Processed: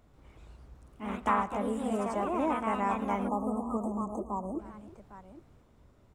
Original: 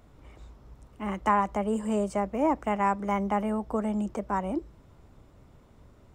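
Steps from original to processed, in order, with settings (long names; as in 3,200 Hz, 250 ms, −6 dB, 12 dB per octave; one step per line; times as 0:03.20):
multi-tap delay 112/310/806 ms −18/−19/−15.5 dB
delay with pitch and tempo change per echo 139 ms, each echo +2 semitones, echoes 2
time-frequency box erased 0:03.28–0:04.59, 1,300–6,200 Hz
level −6 dB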